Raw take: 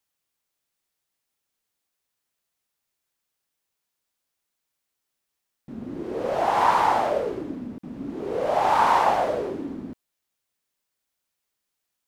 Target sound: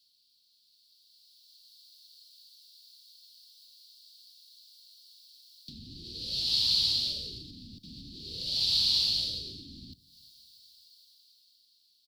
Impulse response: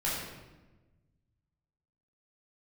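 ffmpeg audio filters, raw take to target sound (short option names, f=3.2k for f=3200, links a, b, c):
-filter_complex "[0:a]firequalizer=gain_entry='entry(280,0);entry(760,-25);entry(4400,9);entry(6400,-19)':delay=0.05:min_phase=1,acrossover=split=160[a][b];[b]acompressor=threshold=-51dB:ratio=5[c];[a][c]amix=inputs=2:normalize=0,acrossover=split=110|2800[d][e][f];[e]alimiter=level_in=21.5dB:limit=-24dB:level=0:latency=1:release=118,volume=-21.5dB[g];[f]dynaudnorm=f=200:g=13:m=13dB[h];[d][g][h]amix=inputs=3:normalize=0,aexciter=amount=8.8:drive=4.2:freq=3k,asplit=2[i][j];[1:a]atrim=start_sample=2205[k];[j][k]afir=irnorm=-1:irlink=0,volume=-27dB[l];[i][l]amix=inputs=2:normalize=0"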